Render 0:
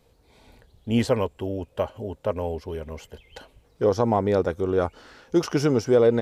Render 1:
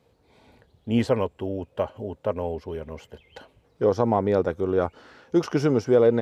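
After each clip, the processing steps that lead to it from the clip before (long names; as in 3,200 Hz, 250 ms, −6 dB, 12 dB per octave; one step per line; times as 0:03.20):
high-pass filter 83 Hz
high-shelf EQ 4,600 Hz −9.5 dB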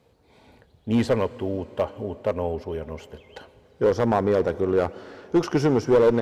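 asymmetric clip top −16.5 dBFS
dense smooth reverb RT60 3.8 s, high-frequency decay 1×, DRR 17 dB
level +2 dB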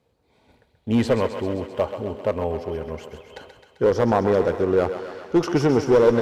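noise gate −51 dBFS, range −8 dB
feedback echo with a high-pass in the loop 131 ms, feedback 70%, high-pass 440 Hz, level −8.5 dB
level +1.5 dB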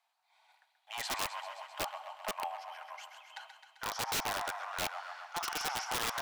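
Butterworth high-pass 700 Hz 72 dB per octave
wrap-around overflow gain 24 dB
level −3.5 dB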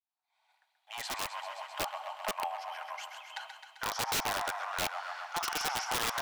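fade in at the beginning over 2.03 s
in parallel at +1 dB: downward compressor, threshold −44 dBFS, peak gain reduction 12.5 dB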